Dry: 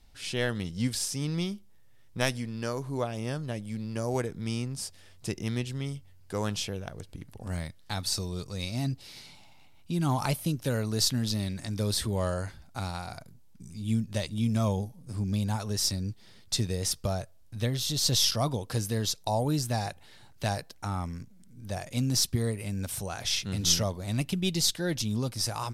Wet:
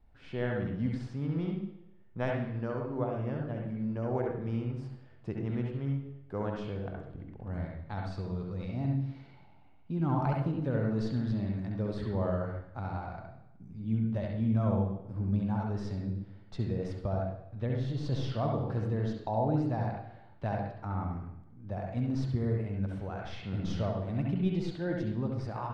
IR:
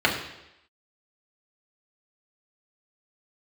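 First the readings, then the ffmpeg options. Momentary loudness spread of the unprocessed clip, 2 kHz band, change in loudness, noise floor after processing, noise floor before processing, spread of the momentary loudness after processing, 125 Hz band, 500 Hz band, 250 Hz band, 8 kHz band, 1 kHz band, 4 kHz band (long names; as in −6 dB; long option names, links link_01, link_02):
13 LU, −7.0 dB, −3.5 dB, −55 dBFS, −54 dBFS, 10 LU, −1.0 dB, −1.0 dB, −0.5 dB, below −30 dB, −2.0 dB, −21.5 dB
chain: -filter_complex "[0:a]lowpass=1300,asplit=2[link_01][link_02];[1:a]atrim=start_sample=2205,highshelf=frequency=10000:gain=12,adelay=66[link_03];[link_02][link_03]afir=irnorm=-1:irlink=0,volume=-17.5dB[link_04];[link_01][link_04]amix=inputs=2:normalize=0,volume=-3.5dB"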